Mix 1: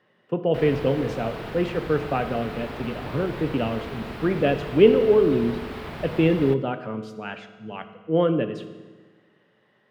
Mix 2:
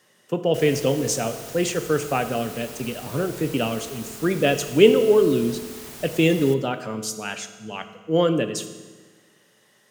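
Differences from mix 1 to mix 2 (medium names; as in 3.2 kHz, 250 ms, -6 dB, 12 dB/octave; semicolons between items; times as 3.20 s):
background -11.0 dB; master: remove distance through air 430 m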